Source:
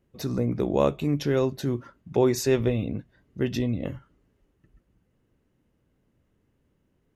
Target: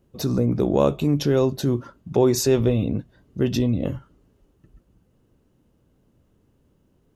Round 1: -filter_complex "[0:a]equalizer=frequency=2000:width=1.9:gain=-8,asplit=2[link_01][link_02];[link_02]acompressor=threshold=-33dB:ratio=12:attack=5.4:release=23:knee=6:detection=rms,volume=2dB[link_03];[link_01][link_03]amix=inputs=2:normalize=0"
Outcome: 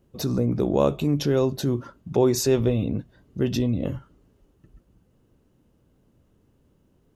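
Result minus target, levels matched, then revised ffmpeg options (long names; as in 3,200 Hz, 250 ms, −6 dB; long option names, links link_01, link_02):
downward compressor: peak gain reduction +7 dB
-filter_complex "[0:a]equalizer=frequency=2000:width=1.9:gain=-8,asplit=2[link_01][link_02];[link_02]acompressor=threshold=-25.5dB:ratio=12:attack=5.4:release=23:knee=6:detection=rms,volume=2dB[link_03];[link_01][link_03]amix=inputs=2:normalize=0"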